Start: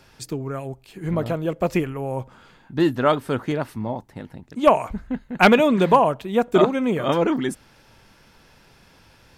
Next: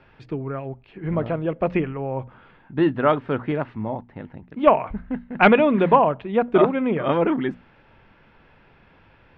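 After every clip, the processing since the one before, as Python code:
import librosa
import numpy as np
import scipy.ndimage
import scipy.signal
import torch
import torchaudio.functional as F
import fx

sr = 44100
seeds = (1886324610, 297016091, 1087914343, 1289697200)

y = scipy.signal.sosfilt(scipy.signal.butter(4, 2800.0, 'lowpass', fs=sr, output='sos'), x)
y = fx.hum_notches(y, sr, base_hz=60, count=4)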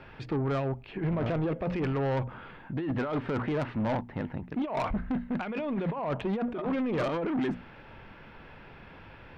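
y = fx.over_compress(x, sr, threshold_db=-26.0, ratio=-1.0)
y = 10.0 ** (-25.0 / 20.0) * np.tanh(y / 10.0 ** (-25.0 / 20.0))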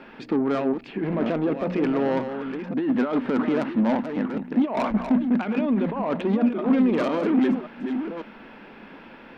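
y = fx.reverse_delay(x, sr, ms=548, wet_db=-8)
y = fx.low_shelf_res(y, sr, hz=160.0, db=-12.0, q=3.0)
y = y * librosa.db_to_amplitude(4.0)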